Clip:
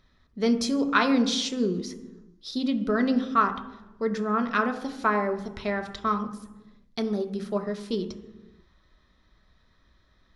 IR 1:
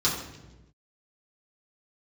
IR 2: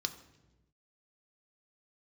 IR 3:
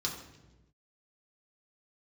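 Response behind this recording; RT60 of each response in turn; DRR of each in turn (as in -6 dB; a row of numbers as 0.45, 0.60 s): 2; 1.1, 1.1, 1.1 s; -9.0, 5.5, -4.0 dB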